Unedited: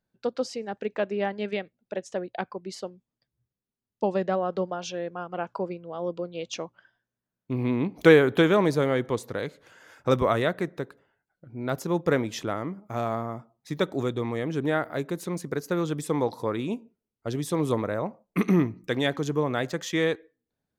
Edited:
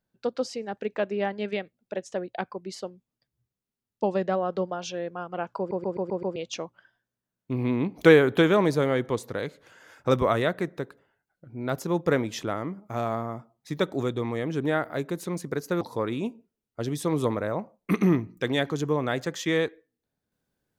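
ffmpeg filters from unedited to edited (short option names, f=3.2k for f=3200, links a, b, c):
-filter_complex "[0:a]asplit=8[a][b][c][d][e][f][g][h];[a]atrim=end=5.712[i];[b]atrim=start=5.578:end=5.712[j];[c]atrim=start=5.578:end=5.712[k];[d]atrim=start=5.578:end=5.712[l];[e]atrim=start=5.578:end=5.712[m];[f]atrim=start=5.578:end=5.712[n];[g]atrim=start=6.358:end=15.812[o];[h]atrim=start=16.278[p];[i][j]acrossfade=d=0.004:c1=hsin:c2=hsin[q];[q][k]acrossfade=d=0.004:c1=hsin:c2=hsin[r];[r][l]acrossfade=d=0.004:c1=hsin:c2=hsin[s];[s][m]acrossfade=d=0.004:c1=hsin:c2=hsin[t];[t][n]acrossfade=d=0.004:c1=hsin:c2=hsin[u];[u][o]acrossfade=d=0.004:c1=hsin:c2=hsin[v];[v][p]acrossfade=d=0.004:c1=hsin:c2=hsin"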